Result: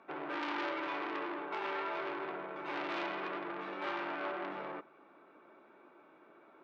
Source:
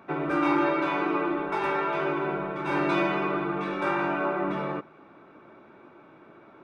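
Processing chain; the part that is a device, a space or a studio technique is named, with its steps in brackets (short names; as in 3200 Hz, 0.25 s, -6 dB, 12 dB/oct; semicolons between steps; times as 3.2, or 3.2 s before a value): public-address speaker with an overloaded transformer (core saturation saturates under 2100 Hz; BPF 300–5100 Hz); gain -7.5 dB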